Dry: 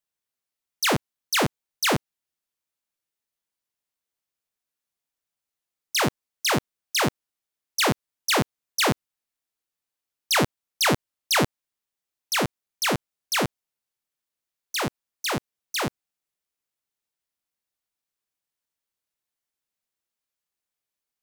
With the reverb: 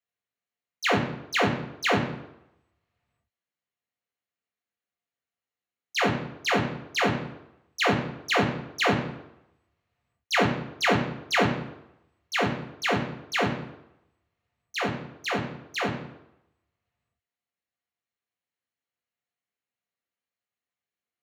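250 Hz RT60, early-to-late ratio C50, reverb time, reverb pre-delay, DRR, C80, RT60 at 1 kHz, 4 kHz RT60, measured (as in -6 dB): 0.75 s, 7.5 dB, 0.85 s, 3 ms, 0.0 dB, 10.5 dB, 0.85 s, 0.65 s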